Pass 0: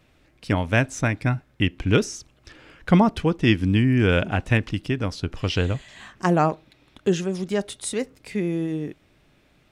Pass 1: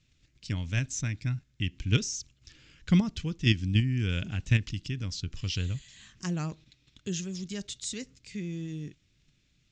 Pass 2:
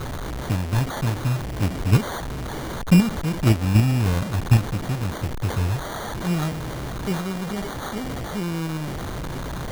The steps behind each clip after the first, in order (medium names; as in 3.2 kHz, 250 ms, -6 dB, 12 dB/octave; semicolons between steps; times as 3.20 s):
FFT filter 140 Hz 0 dB, 740 Hz -20 dB, 3 kHz -1 dB, 7.2 kHz +7 dB, 10 kHz -23 dB; in parallel at +3 dB: level held to a coarse grid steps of 20 dB; on the sum: trim -8 dB
one-bit delta coder 16 kbps, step -31 dBFS; sample-and-hold 17×; trim +8 dB